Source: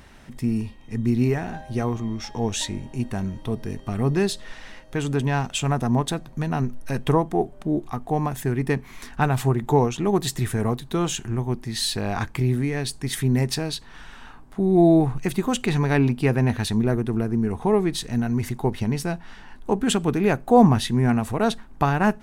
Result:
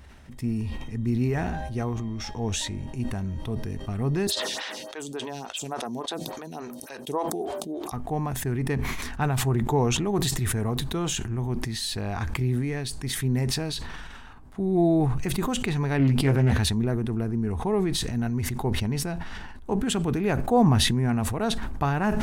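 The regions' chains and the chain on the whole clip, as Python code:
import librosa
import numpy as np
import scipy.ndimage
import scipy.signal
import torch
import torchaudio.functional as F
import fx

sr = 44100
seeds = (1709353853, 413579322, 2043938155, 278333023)

y = fx.chain(x, sr, fx.highpass(hz=320.0, slope=12),
    fx.high_shelf_res(hz=2800.0, db=6.5, q=1.5),
    fx.stagger_phaser(hz=3.5), at=(4.27, 7.92))
y = fx.chain(y, sr, fx.doubler(ms=15.0, db=-4),
    fx.doppler_dist(depth_ms=0.27), at=(15.98, 16.6))
y = fx.peak_eq(y, sr, hz=72.0, db=13.0, octaves=0.68)
y = fx.sustainer(y, sr, db_per_s=24.0)
y = y * librosa.db_to_amplitude(-6.0)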